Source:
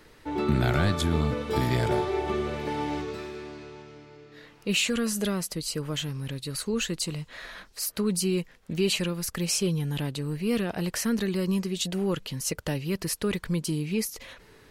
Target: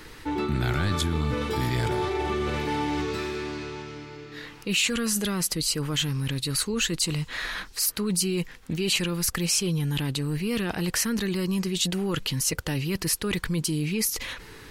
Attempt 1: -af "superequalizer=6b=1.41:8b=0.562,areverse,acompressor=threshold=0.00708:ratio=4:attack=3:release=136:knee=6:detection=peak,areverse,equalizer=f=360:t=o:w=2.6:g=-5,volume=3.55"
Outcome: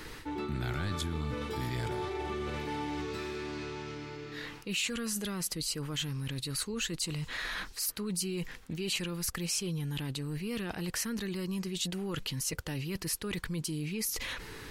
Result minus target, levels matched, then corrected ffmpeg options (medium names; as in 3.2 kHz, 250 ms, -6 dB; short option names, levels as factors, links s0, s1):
compression: peak gain reduction +8.5 dB
-af "superequalizer=6b=1.41:8b=0.562,areverse,acompressor=threshold=0.0266:ratio=4:attack=3:release=136:knee=6:detection=peak,areverse,equalizer=f=360:t=o:w=2.6:g=-5,volume=3.55"